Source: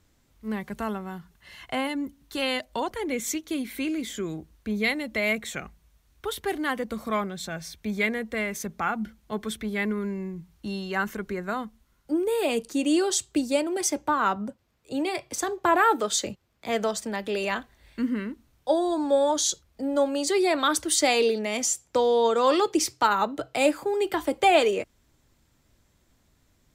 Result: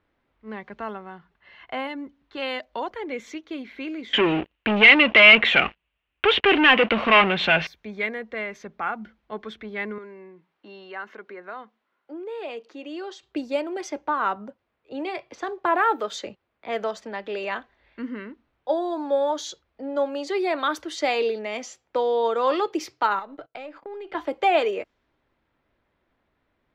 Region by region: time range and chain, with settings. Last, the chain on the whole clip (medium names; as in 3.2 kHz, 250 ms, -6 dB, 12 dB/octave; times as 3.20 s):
4.13–7.67 s: waveshaping leveller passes 5 + resonant low-pass 2.8 kHz, resonance Q 5.7
9.98–13.23 s: high-pass 310 Hz + compression 1.5:1, threshold -40 dBFS
23.19–24.15 s: partial rectifier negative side -3 dB + gate -41 dBFS, range -21 dB + compression 16:1, threshold -31 dBFS
whole clip: tone controls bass -12 dB, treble -11 dB; level-controlled noise filter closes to 3 kHz, open at -23 dBFS; peaking EQ 8.9 kHz -14.5 dB 0.44 oct